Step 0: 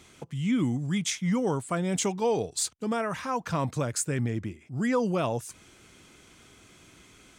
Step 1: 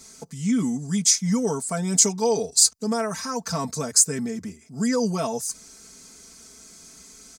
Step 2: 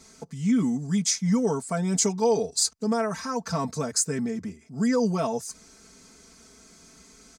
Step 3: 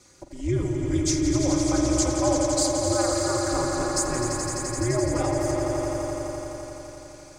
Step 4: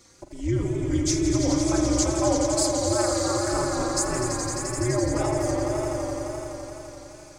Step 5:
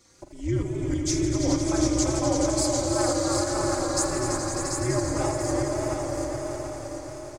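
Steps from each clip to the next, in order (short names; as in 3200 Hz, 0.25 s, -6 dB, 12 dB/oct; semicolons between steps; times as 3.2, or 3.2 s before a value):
resonant high shelf 4000 Hz +9 dB, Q 3; notch 5500 Hz, Q 15; comb 4.5 ms, depth 95%; gain -1 dB
high shelf 5300 Hz -12 dB
ring modulator 120 Hz; swelling echo 85 ms, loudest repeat 5, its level -8 dB; spring tank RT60 3.6 s, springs 44 ms, chirp 70 ms, DRR 4.5 dB
wow and flutter 72 cents
tremolo saw up 3.2 Hz, depth 45%; feedback echo 0.737 s, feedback 39%, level -6 dB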